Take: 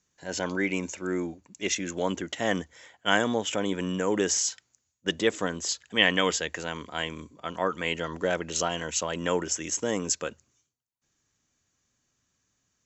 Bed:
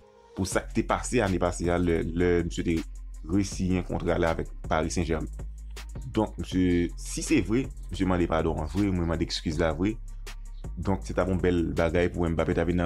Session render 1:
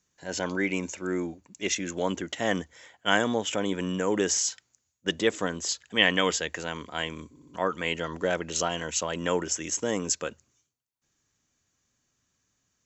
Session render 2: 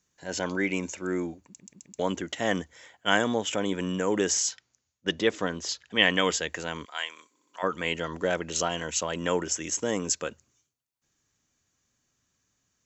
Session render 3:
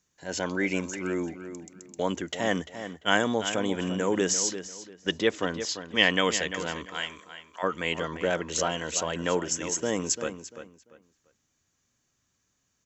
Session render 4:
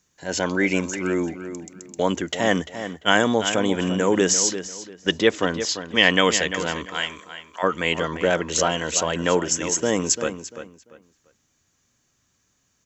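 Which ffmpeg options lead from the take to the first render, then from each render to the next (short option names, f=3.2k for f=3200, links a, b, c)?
-filter_complex "[0:a]asplit=5[a][b][c][d][e];[a]atrim=end=7.362[f];[b]atrim=start=7.298:end=7.362[g];[c]atrim=start=7.298:end=7.362[h];[d]atrim=start=7.298:end=7.362[i];[e]atrim=start=7.538[j];[f][g]acrossfade=d=0.004:c1=hsin:c2=hsin[k];[k][h]acrossfade=d=0.004:c1=hsin:c2=hsin[l];[l][i]acrossfade=d=0.004:c1=hsin:c2=hsin[m];[m][j]acrossfade=d=0.004:c1=hsin:c2=hsin"
-filter_complex "[0:a]asettb=1/sr,asplit=3[a][b][c];[a]atrim=end=4.514[d];[b]atrim=start=4.51:end=5.99,asetpts=PTS-STARTPTS,afade=t=in:d=0.004:c=qsin,afade=t=out:st=1.476:d=0.004:c=qsin,lowpass=f=6.2k:w=0.5412,lowpass=f=6.2k:w=1.3066[e];[c]atrim=start=5.986[f];[d][e]acrossfade=d=0.004:c1=hsin:c2=qsin[g];[g][f]acrossfade=d=0.004:c1=qsin:c2=hsin,asplit=3[h][i][j];[h]afade=t=out:st=6.84:d=0.02[k];[i]highpass=970,afade=t=in:st=6.84:d=0.02,afade=t=out:st=7.62:d=0.02[l];[j]afade=t=in:st=7.62:d=0.02[m];[k][l][m]amix=inputs=3:normalize=0,asplit=5[n][o][p][q][r];[n]atrim=end=1.602[s];[o]atrim=start=1.468:end=1.602[t];[p]atrim=start=1.468:end=1.602[u];[q]atrim=start=1.468:end=1.602[v];[r]atrim=start=1.988[w];[s][t]acrossfade=d=0.004:c1=hsin:c2=hsin[x];[x][u]acrossfade=d=0.004:c1=hsin:c2=hsin[y];[y][v]acrossfade=d=0.004:c1=hsin:c2=hsin[z];[z][w]acrossfade=d=0.004:c1=hsin:c2=hsin"
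-filter_complex "[0:a]asplit=2[a][b];[b]adelay=344,lowpass=f=3.7k:p=1,volume=-10.5dB,asplit=2[c][d];[d]adelay=344,lowpass=f=3.7k:p=1,volume=0.26,asplit=2[e][f];[f]adelay=344,lowpass=f=3.7k:p=1,volume=0.26[g];[a][c][e][g]amix=inputs=4:normalize=0"
-af "volume=6.5dB,alimiter=limit=-1dB:level=0:latency=1"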